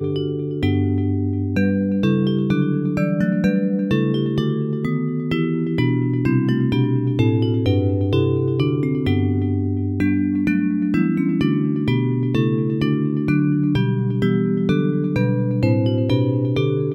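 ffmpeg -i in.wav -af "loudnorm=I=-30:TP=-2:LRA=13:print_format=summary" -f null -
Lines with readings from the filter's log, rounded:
Input Integrated:    -19.7 LUFS
Input True Peak:      -3.6 dBTP
Input LRA:             0.9 LU
Input Threshold:     -29.7 LUFS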